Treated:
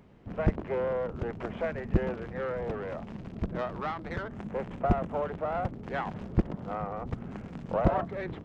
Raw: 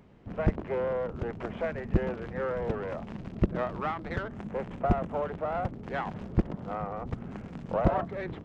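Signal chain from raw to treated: 2.23–4.32 tube stage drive 24 dB, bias 0.3

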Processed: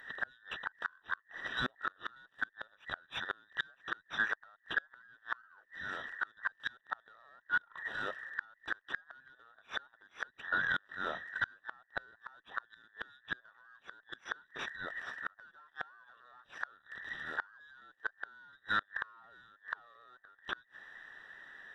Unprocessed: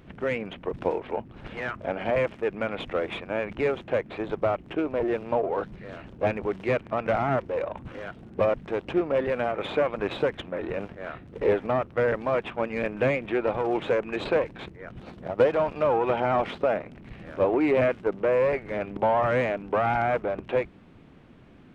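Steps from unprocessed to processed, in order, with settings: band inversion scrambler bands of 2000 Hz; limiter -16.5 dBFS, peak gain reduction 6.5 dB; low shelf 200 Hz -4.5 dB; added harmonics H 3 -30 dB, 4 -37 dB, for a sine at -16 dBFS; flipped gate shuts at -20 dBFS, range -33 dB

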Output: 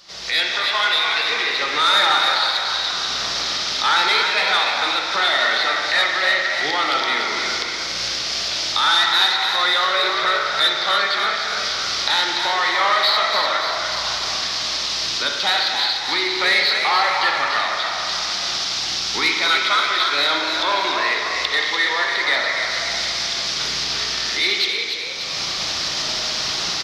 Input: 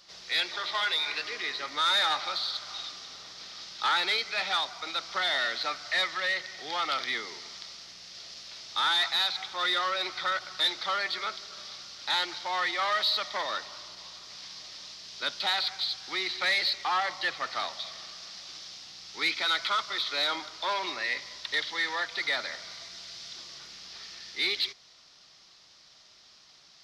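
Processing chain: recorder AGC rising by 32 dB/s; frequency-shifting echo 0.292 s, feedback 53%, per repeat +66 Hz, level -6 dB; on a send at -1.5 dB: reverb RT60 2.0 s, pre-delay 35 ms; on the sum: gain +8 dB

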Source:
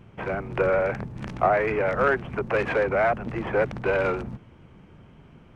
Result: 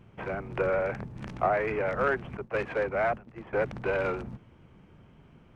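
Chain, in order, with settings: 2.37–3.53 expander -21 dBFS; gain -5 dB

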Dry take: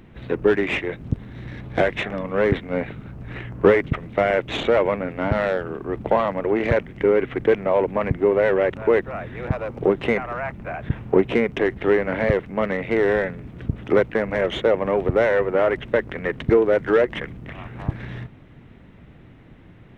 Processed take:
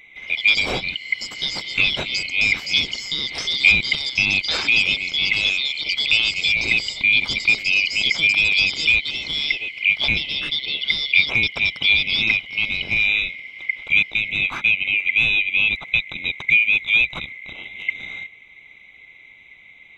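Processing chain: band-swap scrambler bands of 2000 Hz; echoes that change speed 0.162 s, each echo +6 st, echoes 2, each echo -6 dB

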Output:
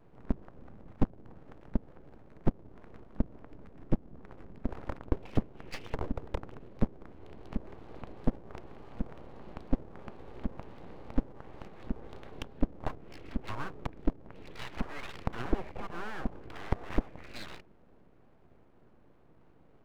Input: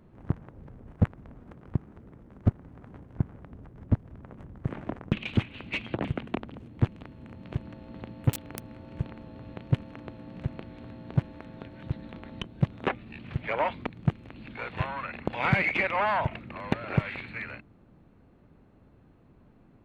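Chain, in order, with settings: high shelf 2200 Hz -6.5 dB; treble ducked by the level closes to 510 Hz, closed at -27 dBFS; vibrato 3.3 Hz 79 cents; full-wave rectifier; gain -1 dB

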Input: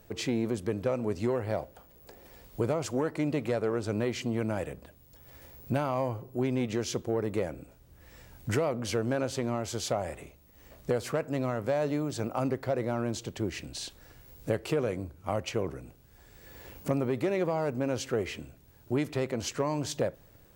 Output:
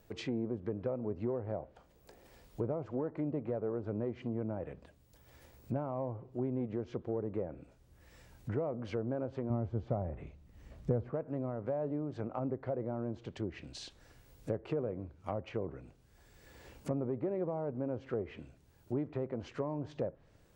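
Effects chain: 9.5–11.1 tone controls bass +10 dB, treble -4 dB; treble ducked by the level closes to 830 Hz, closed at -26.5 dBFS; gain -6 dB

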